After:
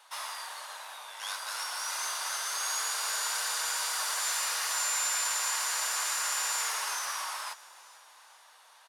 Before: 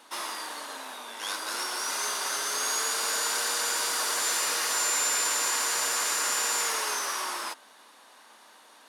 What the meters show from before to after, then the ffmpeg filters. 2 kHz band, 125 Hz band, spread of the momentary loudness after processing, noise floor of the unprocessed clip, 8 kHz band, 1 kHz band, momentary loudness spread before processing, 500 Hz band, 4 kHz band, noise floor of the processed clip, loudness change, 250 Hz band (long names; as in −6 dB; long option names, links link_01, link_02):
−3.5 dB, can't be measured, 12 LU, −55 dBFS, −3.5 dB, −3.5 dB, 12 LU, −10.5 dB, −3.5 dB, −58 dBFS, −3.5 dB, below −25 dB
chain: -filter_complex "[0:a]highpass=frequency=650:width=0.5412,highpass=frequency=650:width=1.3066,asplit=5[link_01][link_02][link_03][link_04][link_05];[link_02]adelay=442,afreqshift=-36,volume=-20dB[link_06];[link_03]adelay=884,afreqshift=-72,volume=-25.7dB[link_07];[link_04]adelay=1326,afreqshift=-108,volume=-31.4dB[link_08];[link_05]adelay=1768,afreqshift=-144,volume=-37dB[link_09];[link_01][link_06][link_07][link_08][link_09]amix=inputs=5:normalize=0,volume=-3.5dB"